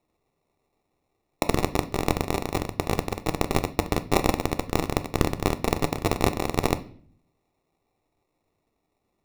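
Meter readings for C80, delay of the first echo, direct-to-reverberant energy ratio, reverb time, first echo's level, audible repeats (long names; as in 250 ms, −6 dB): 21.5 dB, no echo audible, 8.5 dB, 0.50 s, no echo audible, no echo audible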